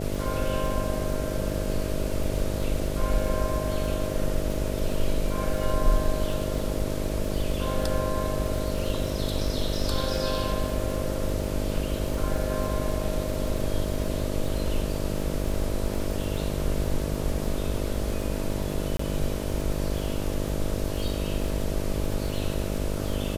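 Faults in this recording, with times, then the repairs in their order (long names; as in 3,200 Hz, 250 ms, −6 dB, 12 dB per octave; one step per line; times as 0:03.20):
mains buzz 50 Hz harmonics 13 −31 dBFS
surface crackle 41 per second −31 dBFS
0:18.97–0:18.99: drop-out 24 ms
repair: click removal
hum removal 50 Hz, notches 13
repair the gap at 0:18.97, 24 ms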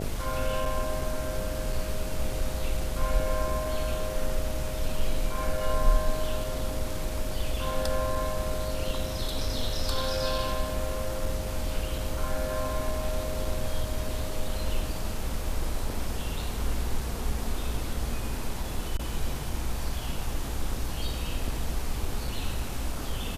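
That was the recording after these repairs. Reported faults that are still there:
none of them is left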